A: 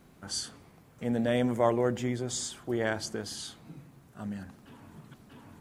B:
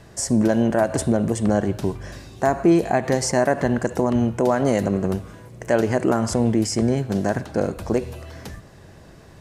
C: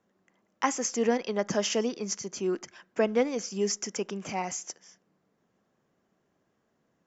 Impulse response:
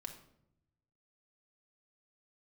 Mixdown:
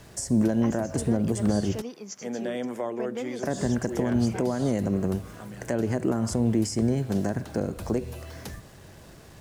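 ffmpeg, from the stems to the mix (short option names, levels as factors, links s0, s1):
-filter_complex "[0:a]highpass=290,adelay=1200,volume=1.12[s0];[1:a]highshelf=f=6400:g=6,acrusher=bits=7:mix=0:aa=0.5,volume=0.708,asplit=3[s1][s2][s3];[s1]atrim=end=1.82,asetpts=PTS-STARTPTS,afade=t=out:st=1.816:d=0.004:c=hsin[s4];[s2]atrim=start=1.82:end=3.43,asetpts=PTS-STARTPTS,volume=0[s5];[s3]atrim=start=3.43,asetpts=PTS-STARTPTS,afade=t=in:d=0.004:c=hsin[s6];[s4][s5][s6]concat=n=3:v=0:a=1[s7];[2:a]volume=0.447[s8];[s0][s7][s8]amix=inputs=3:normalize=0,acrossover=split=360[s9][s10];[s10]acompressor=threshold=0.0251:ratio=4[s11];[s9][s11]amix=inputs=2:normalize=0"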